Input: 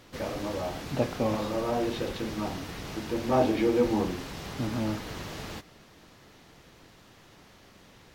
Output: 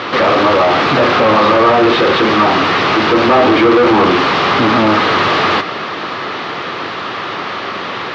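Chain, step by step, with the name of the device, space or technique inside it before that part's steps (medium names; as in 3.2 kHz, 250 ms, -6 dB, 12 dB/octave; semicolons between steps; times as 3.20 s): overdrive pedal into a guitar cabinet (overdrive pedal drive 36 dB, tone 3.2 kHz, clips at -11.5 dBFS; cabinet simulation 100–4400 Hz, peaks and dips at 100 Hz +5 dB, 380 Hz +4 dB, 1.2 kHz +8 dB); trim +7 dB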